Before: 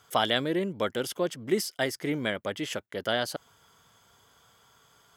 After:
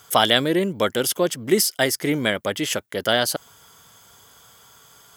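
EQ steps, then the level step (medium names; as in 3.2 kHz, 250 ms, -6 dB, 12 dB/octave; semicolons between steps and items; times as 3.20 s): treble shelf 6.3 kHz +10.5 dB; +7.5 dB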